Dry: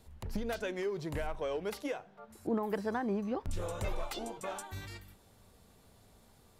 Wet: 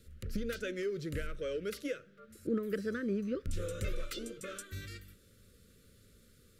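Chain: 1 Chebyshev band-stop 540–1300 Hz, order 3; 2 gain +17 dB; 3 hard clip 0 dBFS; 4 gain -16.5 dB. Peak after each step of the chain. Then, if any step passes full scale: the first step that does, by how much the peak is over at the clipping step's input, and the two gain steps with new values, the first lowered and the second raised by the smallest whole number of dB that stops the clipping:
-22.5, -5.5, -5.5, -22.0 dBFS; no overload

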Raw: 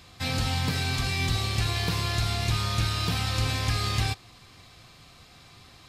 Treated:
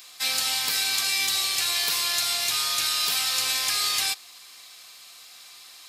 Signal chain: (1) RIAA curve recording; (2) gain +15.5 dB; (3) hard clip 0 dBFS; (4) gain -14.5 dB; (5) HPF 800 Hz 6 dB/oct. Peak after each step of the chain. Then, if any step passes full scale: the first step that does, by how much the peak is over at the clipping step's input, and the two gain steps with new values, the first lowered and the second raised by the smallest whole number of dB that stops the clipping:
-10.0, +5.5, 0.0, -14.5, -13.0 dBFS; step 2, 5.5 dB; step 2 +9.5 dB, step 4 -8.5 dB

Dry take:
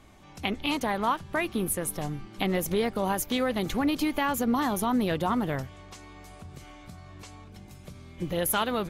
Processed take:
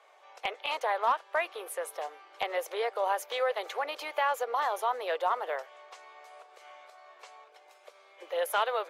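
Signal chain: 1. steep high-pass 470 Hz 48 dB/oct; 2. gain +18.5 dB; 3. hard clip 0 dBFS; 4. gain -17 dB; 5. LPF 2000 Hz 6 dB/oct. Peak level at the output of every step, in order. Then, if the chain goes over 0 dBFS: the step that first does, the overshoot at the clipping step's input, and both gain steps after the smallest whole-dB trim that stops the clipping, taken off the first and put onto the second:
-11.0, +7.5, 0.0, -17.0, -17.0 dBFS; step 2, 7.5 dB; step 2 +10.5 dB, step 4 -9 dB

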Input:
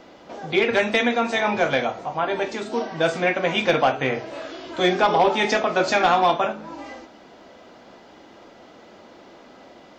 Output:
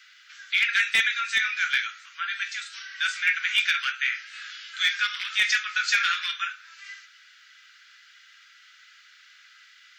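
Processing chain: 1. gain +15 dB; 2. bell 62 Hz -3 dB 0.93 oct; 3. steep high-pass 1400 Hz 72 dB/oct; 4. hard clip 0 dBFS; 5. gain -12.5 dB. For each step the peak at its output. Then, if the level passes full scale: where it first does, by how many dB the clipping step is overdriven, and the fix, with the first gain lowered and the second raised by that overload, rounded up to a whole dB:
+5.0, +5.0, +6.0, 0.0, -12.5 dBFS; step 1, 6.0 dB; step 1 +9 dB, step 5 -6.5 dB

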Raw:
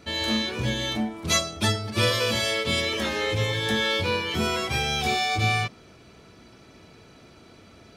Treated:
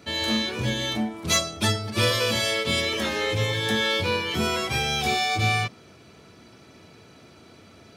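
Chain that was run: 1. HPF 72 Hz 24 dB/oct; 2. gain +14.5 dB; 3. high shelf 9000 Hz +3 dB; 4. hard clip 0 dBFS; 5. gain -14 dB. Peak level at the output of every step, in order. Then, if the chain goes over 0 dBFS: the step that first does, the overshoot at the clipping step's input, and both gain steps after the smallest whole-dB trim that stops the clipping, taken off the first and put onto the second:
-9.5, +5.0, +5.0, 0.0, -14.0 dBFS; step 2, 5.0 dB; step 2 +9.5 dB, step 5 -9 dB

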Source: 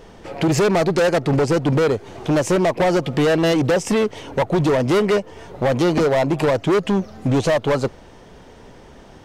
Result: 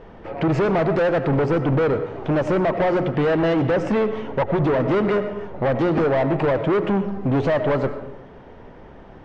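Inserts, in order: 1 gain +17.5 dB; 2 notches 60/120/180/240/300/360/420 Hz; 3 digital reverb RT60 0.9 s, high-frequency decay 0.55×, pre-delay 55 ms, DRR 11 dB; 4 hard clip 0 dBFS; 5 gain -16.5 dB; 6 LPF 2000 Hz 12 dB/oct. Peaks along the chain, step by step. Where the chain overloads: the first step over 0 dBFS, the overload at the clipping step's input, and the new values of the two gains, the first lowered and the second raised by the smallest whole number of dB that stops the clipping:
+4.0, +8.5, +9.5, 0.0, -16.5, -16.0 dBFS; step 1, 9.5 dB; step 1 +7.5 dB, step 5 -6.5 dB

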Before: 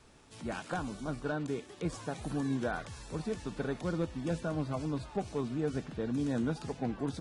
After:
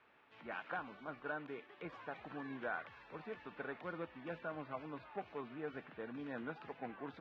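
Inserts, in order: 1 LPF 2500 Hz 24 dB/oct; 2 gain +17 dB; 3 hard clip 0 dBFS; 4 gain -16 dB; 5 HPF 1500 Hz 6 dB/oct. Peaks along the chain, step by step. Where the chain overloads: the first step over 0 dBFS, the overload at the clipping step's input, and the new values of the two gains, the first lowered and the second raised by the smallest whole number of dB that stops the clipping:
-21.0, -4.0, -4.0, -20.0, -29.0 dBFS; no overload

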